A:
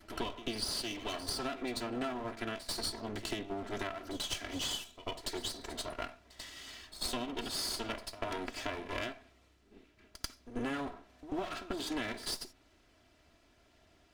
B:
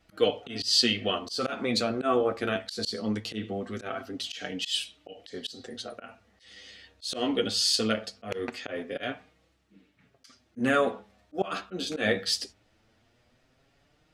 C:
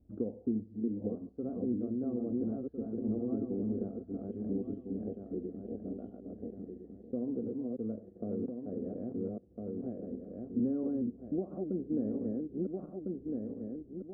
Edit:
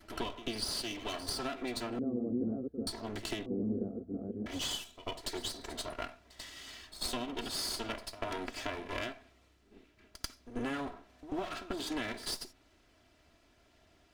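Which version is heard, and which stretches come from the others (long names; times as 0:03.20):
A
0:01.99–0:02.87: punch in from C
0:03.46–0:04.46: punch in from C
not used: B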